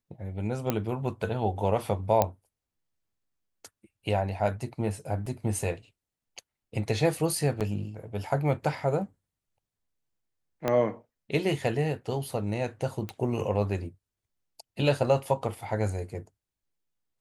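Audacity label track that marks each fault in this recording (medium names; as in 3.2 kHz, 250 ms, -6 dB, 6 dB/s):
0.700000	0.700000	pop -12 dBFS
2.220000	2.220000	pop -9 dBFS
5.260000	5.260000	dropout 4.7 ms
7.600000	7.610000	dropout 7.5 ms
10.680000	10.680000	pop -13 dBFS
13.090000	13.090000	pop -20 dBFS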